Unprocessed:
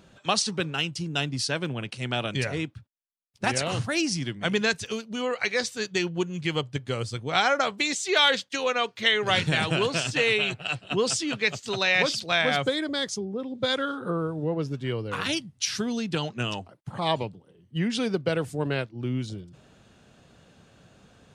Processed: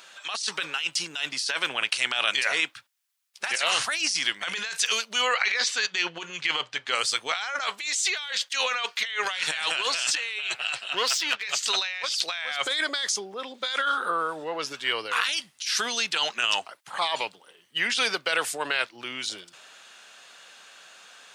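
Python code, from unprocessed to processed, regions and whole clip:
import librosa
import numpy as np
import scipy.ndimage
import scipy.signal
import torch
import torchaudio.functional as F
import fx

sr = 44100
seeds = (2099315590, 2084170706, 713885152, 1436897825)

y = fx.chain(x, sr, fx.over_compress(threshold_db=-28.0, ratio=-0.5),
    fx.air_absorb(metres=99.0), at=(5.33, 6.95))
y = fx.chain(y, sr, fx.air_absorb(metres=110.0),
    fx.power_curve(exponent=1.4), at=(10.93, 11.43))
y = scipy.signal.sosfilt(scipy.signal.butter(2, 1300.0, 'highpass', fs=sr, output='sos'), y)
y = fx.over_compress(y, sr, threshold_db=-36.0, ratio=-1.0)
y = fx.transient(y, sr, attack_db=-1, sustain_db=4)
y = F.gain(torch.from_numpy(y), 8.5).numpy()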